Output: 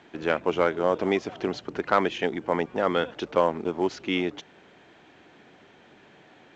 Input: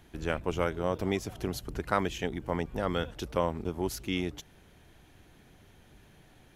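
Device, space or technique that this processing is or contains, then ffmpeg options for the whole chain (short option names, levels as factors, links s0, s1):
telephone: -af "highpass=270,lowpass=3200,asoftclip=type=tanh:threshold=0.168,volume=2.66" -ar 16000 -c:a pcm_alaw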